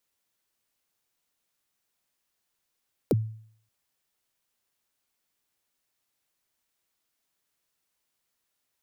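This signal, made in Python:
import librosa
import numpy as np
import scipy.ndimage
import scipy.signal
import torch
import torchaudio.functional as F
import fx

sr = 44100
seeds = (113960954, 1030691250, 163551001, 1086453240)

y = fx.drum_kick(sr, seeds[0], length_s=0.58, level_db=-16.5, start_hz=570.0, end_hz=110.0, sweep_ms=31.0, decay_s=0.58, click=True)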